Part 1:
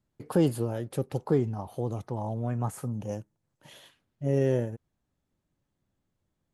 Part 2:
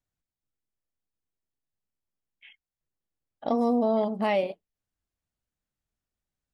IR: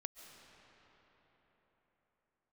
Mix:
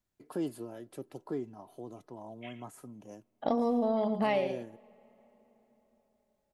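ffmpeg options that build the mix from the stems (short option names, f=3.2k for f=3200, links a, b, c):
-filter_complex "[0:a]highpass=f=150:w=0.5412,highpass=f=150:w=1.3066,aecho=1:1:3:0.46,volume=-11.5dB,asplit=2[a][b];[b]volume=-23dB[c];[1:a]acontrast=32,volume=-4dB,asplit=3[d][e][f];[e]volume=-22dB[g];[f]volume=-12.5dB[h];[2:a]atrim=start_sample=2205[i];[c][g]amix=inputs=2:normalize=0[j];[j][i]afir=irnorm=-1:irlink=0[k];[h]aecho=0:1:112:1[l];[a][d][k][l]amix=inputs=4:normalize=0,acompressor=threshold=-25dB:ratio=6"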